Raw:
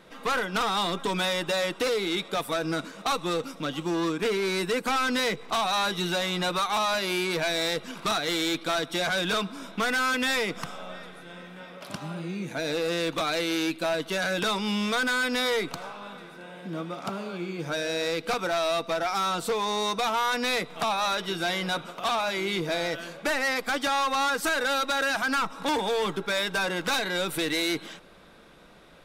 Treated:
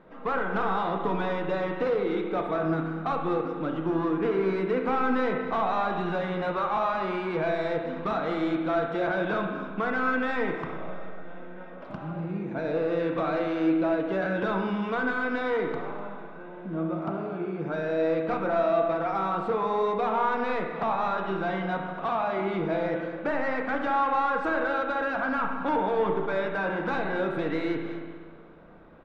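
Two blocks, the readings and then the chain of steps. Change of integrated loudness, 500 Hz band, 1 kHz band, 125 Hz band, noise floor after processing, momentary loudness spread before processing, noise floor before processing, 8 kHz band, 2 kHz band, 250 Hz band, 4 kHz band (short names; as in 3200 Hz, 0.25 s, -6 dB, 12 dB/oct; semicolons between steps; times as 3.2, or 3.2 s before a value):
-1.0 dB, +2.0 dB, +0.5 dB, +2.0 dB, -42 dBFS, 10 LU, -46 dBFS, under -25 dB, -4.0 dB, +2.5 dB, -17.0 dB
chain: LPF 1300 Hz 12 dB/oct; on a send: echo 0.248 s -17 dB; on the sum: spring tank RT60 1.6 s, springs 31/59 ms, chirp 45 ms, DRR 2.5 dB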